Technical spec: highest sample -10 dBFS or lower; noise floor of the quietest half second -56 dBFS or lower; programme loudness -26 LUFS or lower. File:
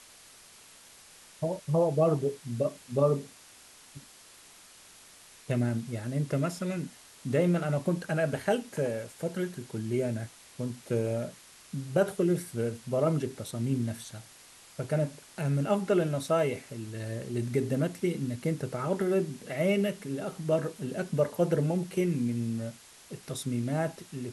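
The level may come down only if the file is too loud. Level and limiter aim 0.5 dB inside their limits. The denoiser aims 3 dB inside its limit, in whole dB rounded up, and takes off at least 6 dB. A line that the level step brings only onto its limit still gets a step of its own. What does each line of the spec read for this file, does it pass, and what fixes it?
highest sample -13.0 dBFS: pass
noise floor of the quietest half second -54 dBFS: fail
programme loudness -30.5 LUFS: pass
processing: noise reduction 6 dB, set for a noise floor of -54 dBFS

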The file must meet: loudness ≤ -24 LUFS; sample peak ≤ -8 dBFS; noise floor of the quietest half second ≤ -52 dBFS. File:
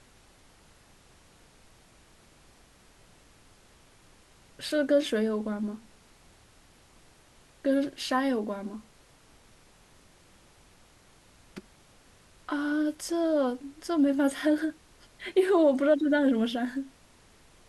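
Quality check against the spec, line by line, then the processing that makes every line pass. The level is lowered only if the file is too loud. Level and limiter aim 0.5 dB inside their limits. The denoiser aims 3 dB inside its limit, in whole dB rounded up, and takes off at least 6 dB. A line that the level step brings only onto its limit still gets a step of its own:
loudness -27.5 LUFS: pass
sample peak -13.0 dBFS: pass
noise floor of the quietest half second -58 dBFS: pass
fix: none needed

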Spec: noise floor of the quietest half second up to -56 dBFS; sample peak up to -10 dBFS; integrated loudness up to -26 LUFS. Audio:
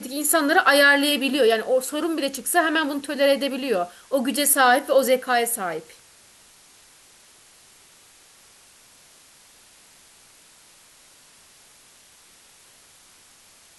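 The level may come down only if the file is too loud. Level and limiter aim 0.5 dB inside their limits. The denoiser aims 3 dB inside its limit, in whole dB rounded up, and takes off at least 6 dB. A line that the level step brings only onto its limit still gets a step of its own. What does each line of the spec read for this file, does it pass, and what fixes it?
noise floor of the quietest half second -53 dBFS: fail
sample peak -4.0 dBFS: fail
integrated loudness -20.0 LUFS: fail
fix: trim -6.5 dB

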